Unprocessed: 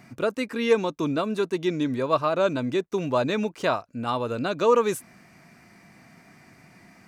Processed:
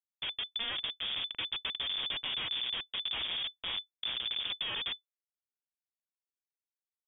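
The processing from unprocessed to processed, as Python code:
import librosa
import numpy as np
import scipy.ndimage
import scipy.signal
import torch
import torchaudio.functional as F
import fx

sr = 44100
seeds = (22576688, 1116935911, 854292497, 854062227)

y = fx.envelope_flatten(x, sr, power=0.1)
y = fx.schmitt(y, sr, flips_db=-19.5)
y = fx.freq_invert(y, sr, carrier_hz=3500)
y = F.gain(torch.from_numpy(y), -9.0).numpy()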